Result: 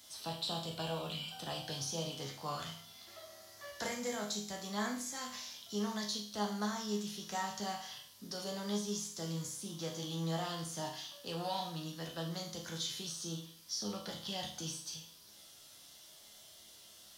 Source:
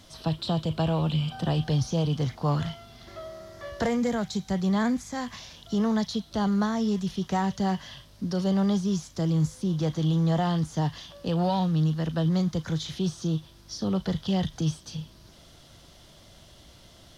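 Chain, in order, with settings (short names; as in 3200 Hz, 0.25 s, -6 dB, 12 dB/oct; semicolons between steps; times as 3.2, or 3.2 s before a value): RIAA curve recording; resonator bank C#2 minor, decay 0.53 s; gain +5.5 dB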